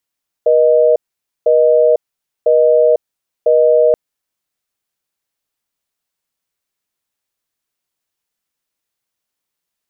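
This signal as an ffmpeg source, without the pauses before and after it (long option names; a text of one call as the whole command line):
ffmpeg -f lavfi -i "aevalsrc='0.316*(sin(2*PI*480*t)+sin(2*PI*620*t))*clip(min(mod(t,1),0.5-mod(t,1))/0.005,0,1)':duration=3.48:sample_rate=44100" out.wav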